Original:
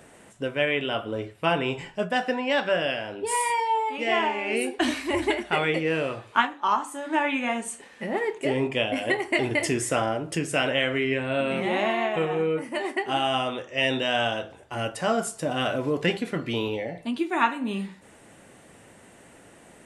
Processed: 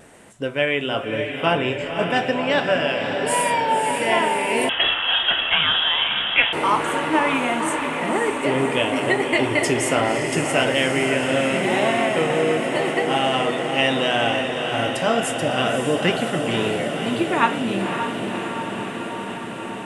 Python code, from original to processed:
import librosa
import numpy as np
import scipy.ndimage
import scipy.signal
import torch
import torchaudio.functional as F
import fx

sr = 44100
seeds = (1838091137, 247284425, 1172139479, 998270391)

y = fx.echo_diffused(x, sr, ms=553, feedback_pct=78, wet_db=-6.0)
y = fx.vibrato(y, sr, rate_hz=0.95, depth_cents=13.0)
y = fx.freq_invert(y, sr, carrier_hz=3600, at=(4.69, 6.53))
y = y * 10.0 ** (3.5 / 20.0)